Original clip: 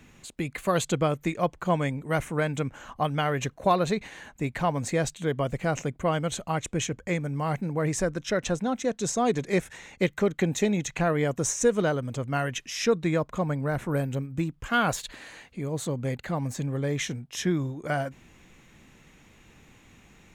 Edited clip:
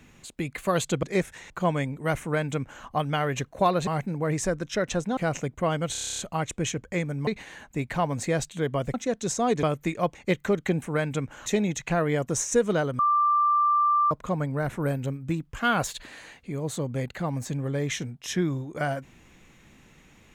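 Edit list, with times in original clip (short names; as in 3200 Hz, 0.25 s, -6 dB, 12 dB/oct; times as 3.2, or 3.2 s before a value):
1.03–1.55 swap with 9.41–9.88
2.25–2.89 copy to 10.55
3.92–5.59 swap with 7.42–8.72
6.34 stutter 0.03 s, 10 plays
12.08–13.2 bleep 1180 Hz -18.5 dBFS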